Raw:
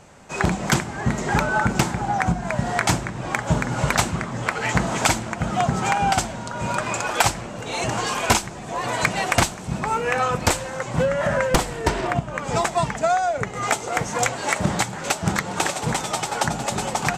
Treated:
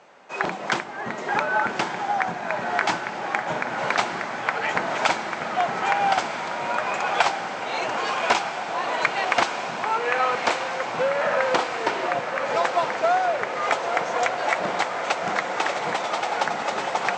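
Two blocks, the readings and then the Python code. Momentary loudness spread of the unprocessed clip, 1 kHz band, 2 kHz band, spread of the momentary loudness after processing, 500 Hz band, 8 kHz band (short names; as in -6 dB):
5 LU, +0.5 dB, +0.5 dB, 5 LU, -0.5 dB, -12.0 dB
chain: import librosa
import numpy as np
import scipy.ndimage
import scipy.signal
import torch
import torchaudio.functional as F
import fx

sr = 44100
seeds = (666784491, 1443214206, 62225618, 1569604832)

y = fx.bandpass_edges(x, sr, low_hz=430.0, high_hz=6200.0)
y = fx.air_absorb(y, sr, metres=110.0)
y = fx.echo_diffused(y, sr, ms=1245, feedback_pct=72, wet_db=-7)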